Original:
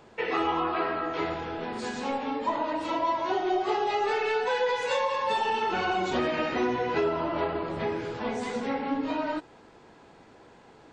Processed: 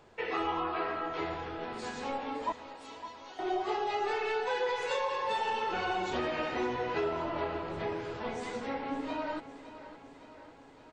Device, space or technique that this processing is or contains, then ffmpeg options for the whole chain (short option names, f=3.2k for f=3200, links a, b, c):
low shelf boost with a cut just above: -filter_complex "[0:a]asettb=1/sr,asplit=3[a][b][c];[a]atrim=end=2.524[d];[b]atrim=start=2.52:end=3.39,asetpts=PTS-STARTPTS,afade=t=in:d=0.004:c=qsin,afade=t=out:st=0.866:d=0.004:c=qsin,aderivative[e];[c]atrim=start=3.386[f];[d][e]acrossfade=d=0.004:c1=hsin:c2=qsin[g];[g][f]acrossfade=d=0.004:c1=qsin:c2=hsin,lowshelf=f=66:g=6,equalizer=f=220:t=o:w=0.93:g=-4.5,aecho=1:1:561|1122|1683|2244|2805|3366:0.2|0.12|0.0718|0.0431|0.0259|0.0155,volume=-5dB"